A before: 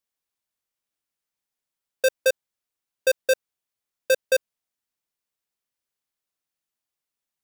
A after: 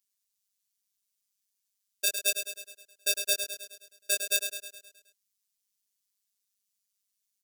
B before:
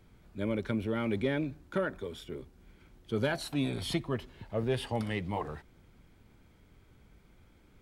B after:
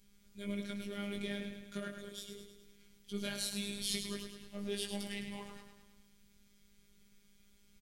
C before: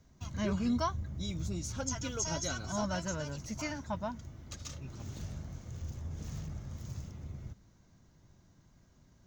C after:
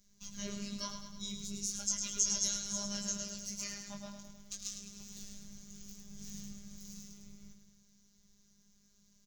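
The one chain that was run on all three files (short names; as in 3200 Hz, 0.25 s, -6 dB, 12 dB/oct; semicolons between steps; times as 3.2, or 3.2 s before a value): EQ curve 110 Hz 0 dB, 840 Hz -12 dB, 5900 Hz +11 dB; chorus 0.38 Hz, delay 16 ms, depth 5.4 ms; feedback echo 0.105 s, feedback 55%, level -7.5 dB; robotiser 202 Hz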